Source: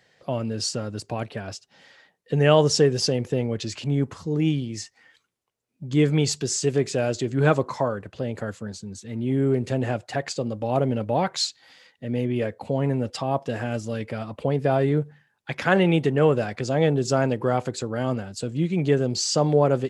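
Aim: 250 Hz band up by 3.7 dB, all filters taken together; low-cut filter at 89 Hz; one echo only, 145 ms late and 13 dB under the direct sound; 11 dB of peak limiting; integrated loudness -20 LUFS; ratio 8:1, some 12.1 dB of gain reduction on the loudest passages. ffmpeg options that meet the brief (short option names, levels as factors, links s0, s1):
-af "highpass=89,equalizer=f=250:t=o:g=5,acompressor=threshold=0.0631:ratio=8,alimiter=limit=0.0794:level=0:latency=1,aecho=1:1:145:0.224,volume=3.98"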